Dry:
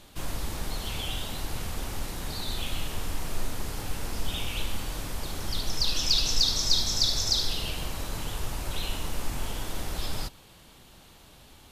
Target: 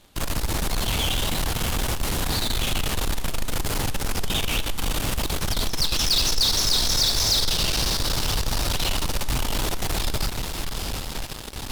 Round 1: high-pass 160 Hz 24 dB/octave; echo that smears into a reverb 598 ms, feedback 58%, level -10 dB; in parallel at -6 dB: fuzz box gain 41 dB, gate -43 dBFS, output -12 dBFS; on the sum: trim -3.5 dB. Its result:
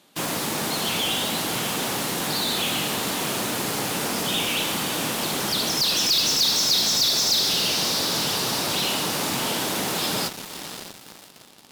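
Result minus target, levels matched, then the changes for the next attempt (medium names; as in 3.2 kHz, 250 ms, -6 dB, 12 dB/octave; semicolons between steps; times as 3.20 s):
125 Hz band -9.0 dB
remove: high-pass 160 Hz 24 dB/octave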